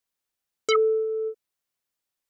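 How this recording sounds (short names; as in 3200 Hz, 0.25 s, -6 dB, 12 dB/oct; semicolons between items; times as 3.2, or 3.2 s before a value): noise floor -85 dBFS; spectral tilt +0.5 dB/oct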